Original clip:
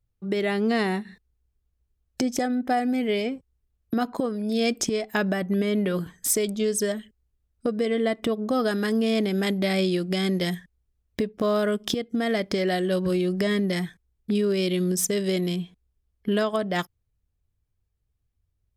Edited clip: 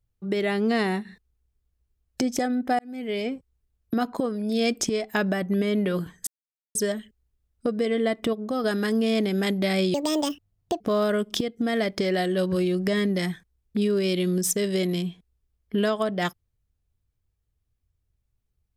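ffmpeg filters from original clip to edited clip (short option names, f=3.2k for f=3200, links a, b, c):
-filter_complex "[0:a]asplit=8[a][b][c][d][e][f][g][h];[a]atrim=end=2.79,asetpts=PTS-STARTPTS,afade=t=out:st=2.786:d=0.004:c=hsin[i];[b]atrim=start=2.79:end=6.27,asetpts=PTS-STARTPTS,afade=t=in:d=0.53,afade=t=out:st=3.476:d=0.004:c=hsin[j];[c]atrim=start=6.27:end=6.75,asetpts=PTS-STARTPTS,volume=0[k];[d]atrim=start=6.75:end=8.332,asetpts=PTS-STARTPTS,afade=t=in:d=0.004:c=hsin[l];[e]atrim=start=8.328:end=8.642,asetpts=PTS-STARTPTS,volume=-3.5dB[m];[f]atrim=start=8.638:end=9.944[n];[g]atrim=start=9.94:end=11.34,asetpts=PTS-STARTPTS,asetrate=71442,aresample=44100,atrim=end_sample=38111,asetpts=PTS-STARTPTS[o];[h]atrim=start=11.336[p];[i][j][k][l]concat=n=4:v=0:a=1[q];[q][m]acrossfade=d=0.004:c1=hsin:c2=hsin[r];[r][n]acrossfade=d=0.004:c1=hsin:c2=hsin[s];[s][o]acrossfade=d=0.004:c1=hsin:c2=hsin[t];[t][p]acrossfade=d=0.004:c1=hsin:c2=hsin"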